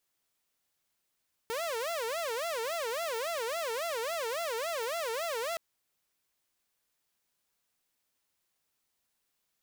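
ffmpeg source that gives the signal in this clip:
ffmpeg -f lavfi -i "aevalsrc='0.0335*(2*mod((565.5*t-119.5/(2*PI*3.6)*sin(2*PI*3.6*t)),1)-1)':duration=4.07:sample_rate=44100" out.wav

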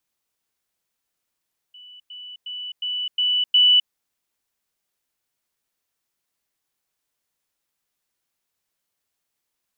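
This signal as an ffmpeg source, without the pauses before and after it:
ffmpeg -f lavfi -i "aevalsrc='pow(10,(-41.5+6*floor(t/0.36))/20)*sin(2*PI*2970*t)*clip(min(mod(t,0.36),0.26-mod(t,0.36))/0.005,0,1)':duration=2.16:sample_rate=44100" out.wav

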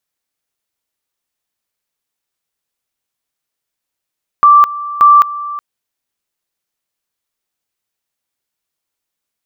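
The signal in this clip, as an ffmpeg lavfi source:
ffmpeg -f lavfi -i "aevalsrc='pow(10,(-2.5-17*gte(mod(t,0.58),0.21))/20)*sin(2*PI*1170*t)':duration=1.16:sample_rate=44100" out.wav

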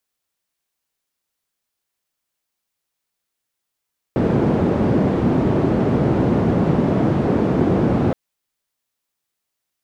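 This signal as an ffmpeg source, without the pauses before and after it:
ffmpeg -f lavfi -i "anoisesrc=color=white:duration=3.97:sample_rate=44100:seed=1,highpass=frequency=110,lowpass=frequency=300,volume=7.9dB" out.wav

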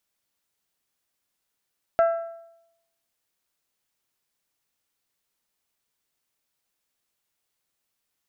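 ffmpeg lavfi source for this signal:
ffmpeg -f lavfi -i "aevalsrc='0.2*pow(10,-3*t/0.83)*sin(2*PI*669*t)+0.0668*pow(10,-3*t/0.674)*sin(2*PI*1338*t)+0.0224*pow(10,-3*t/0.638)*sin(2*PI*1605.6*t)+0.0075*pow(10,-3*t/0.597)*sin(2*PI*2007*t)+0.00251*pow(10,-3*t/0.548)*sin(2*PI*2676*t)':duration=1.55:sample_rate=44100" out.wav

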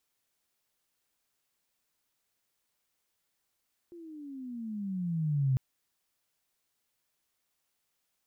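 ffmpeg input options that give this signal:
ffmpeg -f lavfi -i "aevalsrc='pow(10,(-23+22*(t/1.65-1))/20)*sin(2*PI*351*1.65/(-17.5*log(2)/12)*(exp(-17.5*log(2)/12*t/1.65)-1))':duration=1.65:sample_rate=44100" out.wav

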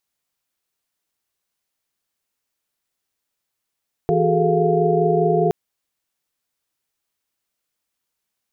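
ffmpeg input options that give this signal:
ffmpeg -f lavfi -i "aevalsrc='0.0891*(sin(2*PI*164.81*t)+sin(2*PI*369.99*t)+sin(2*PI*415.3*t)+sin(2*PI*440*t)+sin(2*PI*698.46*t))':duration=1.42:sample_rate=44100" out.wav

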